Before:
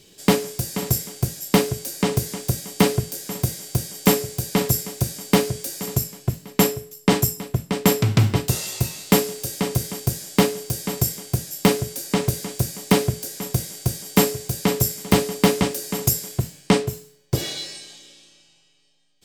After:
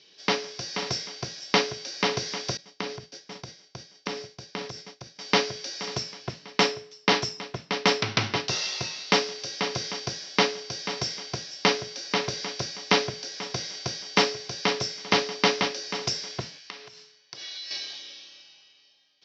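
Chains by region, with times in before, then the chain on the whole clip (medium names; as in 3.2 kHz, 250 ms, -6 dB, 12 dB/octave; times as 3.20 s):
2.57–5.19 s: expander -25 dBFS + bass shelf 380 Hz +6.5 dB + compression 2.5:1, threshold -34 dBFS
16.58–17.71 s: high-pass 290 Hz 6 dB/octave + peaking EQ 430 Hz -7.5 dB 2.4 oct + compression 20:1, threshold -39 dBFS
whole clip: Chebyshev low-pass 5.8 kHz, order 6; level rider gain up to 7 dB; high-pass 1.1 kHz 6 dB/octave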